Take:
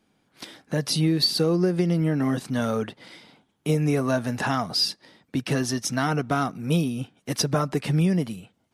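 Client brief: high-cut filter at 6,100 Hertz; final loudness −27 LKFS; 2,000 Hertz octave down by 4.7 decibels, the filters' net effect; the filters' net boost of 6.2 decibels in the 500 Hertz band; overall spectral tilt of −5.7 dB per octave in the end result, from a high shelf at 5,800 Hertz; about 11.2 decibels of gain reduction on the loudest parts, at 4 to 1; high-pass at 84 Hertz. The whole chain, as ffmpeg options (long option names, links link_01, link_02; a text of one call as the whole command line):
ffmpeg -i in.wav -af "highpass=84,lowpass=6100,equalizer=frequency=500:width_type=o:gain=8,equalizer=frequency=2000:width_type=o:gain=-6.5,highshelf=frequency=5800:gain=-7.5,acompressor=threshold=-27dB:ratio=4,volume=4dB" out.wav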